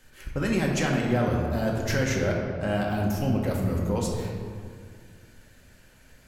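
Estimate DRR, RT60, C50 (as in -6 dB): -2.0 dB, 2.0 s, 2.0 dB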